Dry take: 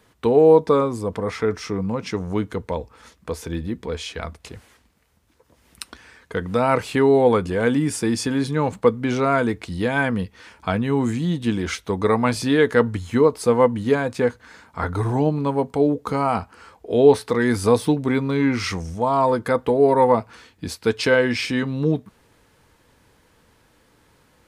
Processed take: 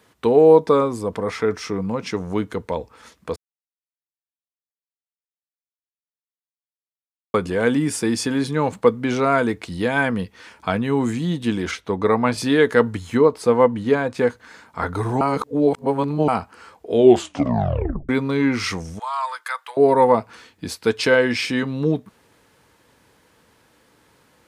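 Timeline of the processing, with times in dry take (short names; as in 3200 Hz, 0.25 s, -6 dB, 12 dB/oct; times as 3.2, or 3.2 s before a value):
3.36–7.34 mute
11.71–12.38 LPF 3200 Hz 6 dB/oct
13.17–14.18 high shelf 6100 Hz -9 dB
15.21–16.28 reverse
16.95 tape stop 1.14 s
18.99–19.77 HPF 1100 Hz 24 dB/oct
whole clip: HPF 140 Hz 6 dB/oct; gain +1.5 dB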